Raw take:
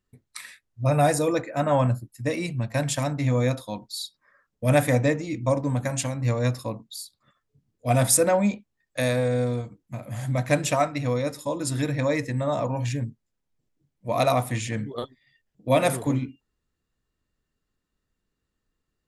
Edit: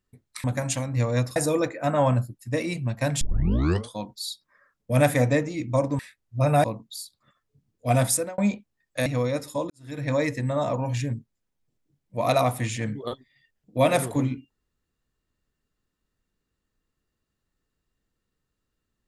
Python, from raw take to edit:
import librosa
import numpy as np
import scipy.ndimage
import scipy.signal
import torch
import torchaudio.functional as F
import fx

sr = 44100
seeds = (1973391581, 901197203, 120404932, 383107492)

y = fx.edit(x, sr, fx.swap(start_s=0.44, length_s=0.65, other_s=5.72, other_length_s=0.92),
    fx.tape_start(start_s=2.94, length_s=0.73),
    fx.fade_out_span(start_s=7.98, length_s=0.4),
    fx.cut(start_s=9.06, length_s=1.91),
    fx.fade_in_span(start_s=11.61, length_s=0.4, curve='qua'), tone=tone)